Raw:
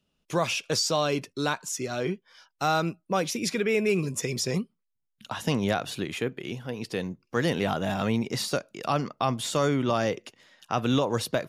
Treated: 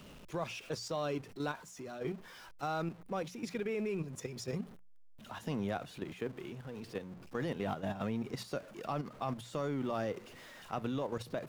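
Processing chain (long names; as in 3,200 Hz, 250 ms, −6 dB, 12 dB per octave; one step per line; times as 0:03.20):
converter with a step at zero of −34.5 dBFS
high-shelf EQ 2,500 Hz −9.5 dB
output level in coarse steps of 9 dB
mains-hum notches 60/120/180 Hz
level −8 dB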